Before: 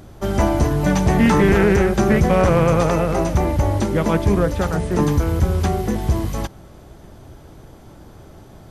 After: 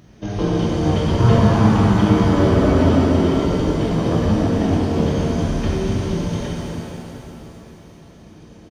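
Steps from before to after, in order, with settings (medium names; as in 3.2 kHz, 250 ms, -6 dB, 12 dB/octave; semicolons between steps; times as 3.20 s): high-pass 170 Hz 12 dB/octave; band-stop 1.5 kHz, Q 29; pitch shift -11.5 st; pitch-shifted reverb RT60 3 s, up +7 st, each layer -8 dB, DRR -5 dB; trim -3.5 dB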